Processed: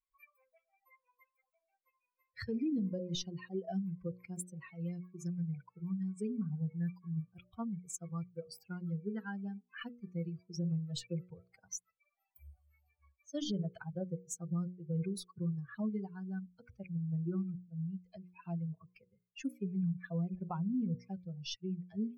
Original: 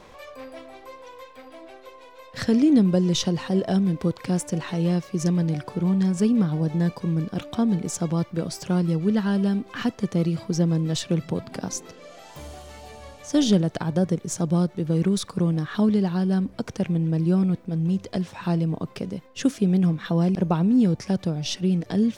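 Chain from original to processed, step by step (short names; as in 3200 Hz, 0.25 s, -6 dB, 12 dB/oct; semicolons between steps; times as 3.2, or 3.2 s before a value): per-bin expansion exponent 3; notches 60/120/180/240/300/360/420/480/540 Hz; limiter -23 dBFS, peak gain reduction 10 dB; gain -5.5 dB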